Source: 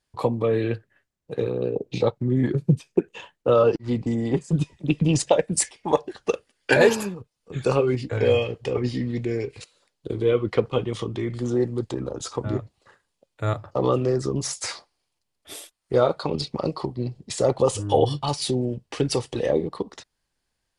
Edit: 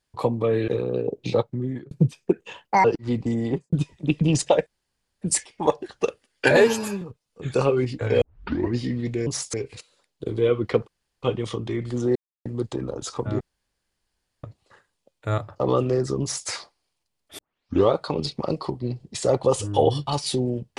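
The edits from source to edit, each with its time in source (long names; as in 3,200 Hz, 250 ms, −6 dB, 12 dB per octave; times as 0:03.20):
0:00.68–0:01.36: remove
0:02.08–0:02.59: fade out
0:03.33–0:03.65: play speed 164%
0:04.25–0:04.53: fade out and dull
0:05.47: splice in room tone 0.55 s
0:06.82–0:07.12: time-stretch 1.5×
0:08.32: tape start 0.54 s
0:10.71: splice in room tone 0.35 s
0:11.64: splice in silence 0.30 s
0:12.59: splice in room tone 1.03 s
0:14.37–0:14.64: duplicate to 0:09.37
0:15.54: tape start 0.54 s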